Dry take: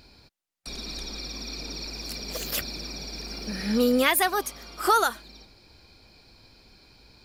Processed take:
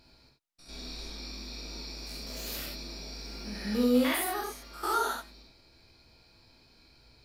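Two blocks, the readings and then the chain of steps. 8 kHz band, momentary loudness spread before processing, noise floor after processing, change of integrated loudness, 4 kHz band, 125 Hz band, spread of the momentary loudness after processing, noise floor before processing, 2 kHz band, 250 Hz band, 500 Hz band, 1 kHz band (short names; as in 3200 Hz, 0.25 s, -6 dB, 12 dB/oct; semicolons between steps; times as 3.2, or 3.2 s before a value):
-7.5 dB, 15 LU, -62 dBFS, -6.0 dB, -6.5 dB, -4.5 dB, 15 LU, -57 dBFS, -8.5 dB, -2.0 dB, -5.5 dB, -7.5 dB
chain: stepped spectrum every 0.1 s; non-linear reverb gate 0.11 s flat, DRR -1.5 dB; gain -7.5 dB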